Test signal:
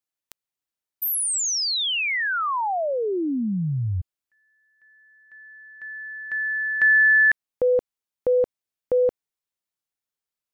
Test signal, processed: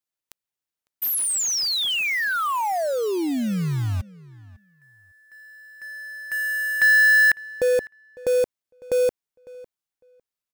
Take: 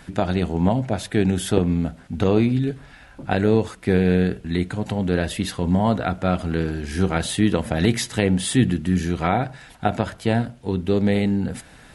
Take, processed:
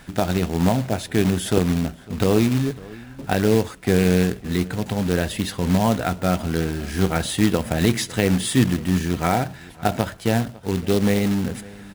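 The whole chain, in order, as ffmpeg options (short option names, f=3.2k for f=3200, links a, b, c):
-filter_complex "[0:a]acrusher=bits=3:mode=log:mix=0:aa=0.000001,asplit=2[a][b];[b]adelay=553,lowpass=f=3.4k:p=1,volume=-21dB,asplit=2[c][d];[d]adelay=553,lowpass=f=3.4k:p=1,volume=0.16[e];[a][c][e]amix=inputs=3:normalize=0"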